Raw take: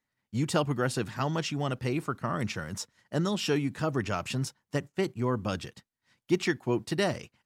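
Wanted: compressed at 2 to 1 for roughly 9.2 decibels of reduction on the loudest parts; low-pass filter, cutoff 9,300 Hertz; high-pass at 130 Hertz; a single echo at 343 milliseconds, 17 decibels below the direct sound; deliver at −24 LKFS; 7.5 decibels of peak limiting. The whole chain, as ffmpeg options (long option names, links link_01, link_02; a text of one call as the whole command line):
ffmpeg -i in.wav -af "highpass=130,lowpass=9300,acompressor=threshold=-38dB:ratio=2,alimiter=level_in=4dB:limit=-24dB:level=0:latency=1,volume=-4dB,aecho=1:1:343:0.141,volume=16dB" out.wav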